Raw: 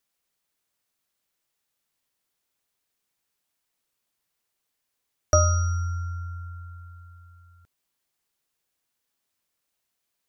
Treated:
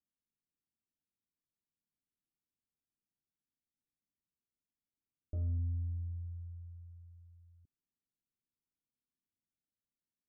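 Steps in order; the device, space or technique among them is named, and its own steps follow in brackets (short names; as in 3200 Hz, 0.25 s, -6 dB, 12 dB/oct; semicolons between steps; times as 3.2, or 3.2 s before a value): overdriven synthesiser ladder filter (soft clip -21.5 dBFS, distortion -8 dB; ladder low-pass 340 Hz, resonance 30%); 5.58–6.25 band shelf 1400 Hz -12.5 dB 2.6 oct; gain -1.5 dB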